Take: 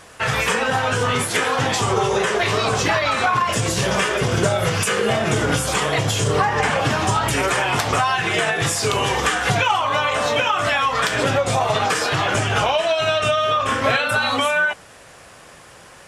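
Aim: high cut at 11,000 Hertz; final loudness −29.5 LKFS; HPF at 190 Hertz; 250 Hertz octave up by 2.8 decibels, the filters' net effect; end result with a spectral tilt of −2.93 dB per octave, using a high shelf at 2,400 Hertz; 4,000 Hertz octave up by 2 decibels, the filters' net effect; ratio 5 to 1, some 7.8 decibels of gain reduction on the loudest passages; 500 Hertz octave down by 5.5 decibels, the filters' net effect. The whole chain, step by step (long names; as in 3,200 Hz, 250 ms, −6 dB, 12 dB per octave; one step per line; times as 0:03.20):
high-pass filter 190 Hz
low-pass filter 11,000 Hz
parametric band 250 Hz +8.5 dB
parametric band 500 Hz −9 dB
high-shelf EQ 2,400 Hz −4 dB
parametric band 4,000 Hz +6.5 dB
downward compressor 5 to 1, threshold −25 dBFS
level −2.5 dB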